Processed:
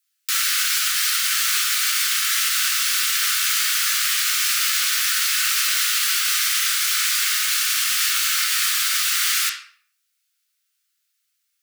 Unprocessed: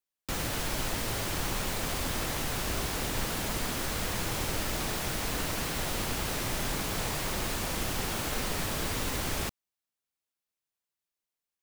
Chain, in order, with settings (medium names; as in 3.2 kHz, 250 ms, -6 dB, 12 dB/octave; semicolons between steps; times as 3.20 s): steep high-pass 1.2 kHz 96 dB/octave; treble shelf 2.3 kHz +11.5 dB; peak limiter -18 dBFS, peak gain reduction 4 dB; reverberation RT60 0.55 s, pre-delay 5 ms, DRR -2.5 dB; trim +6 dB